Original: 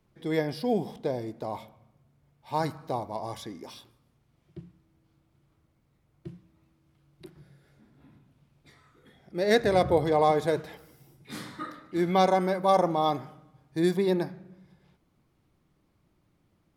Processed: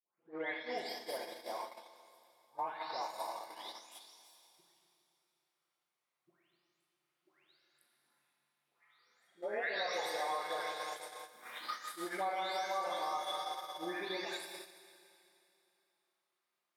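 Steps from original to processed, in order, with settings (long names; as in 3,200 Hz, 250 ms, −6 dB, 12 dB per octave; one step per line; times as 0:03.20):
every frequency bin delayed by itself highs late, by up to 553 ms
high-pass filter 1,000 Hz 12 dB per octave
four-comb reverb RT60 2.9 s, combs from 28 ms, DRR 0.5 dB
downward compressor 4 to 1, threshold −44 dBFS, peak gain reduction 16.5 dB
noise gate −46 dBFS, range −16 dB
level +7 dB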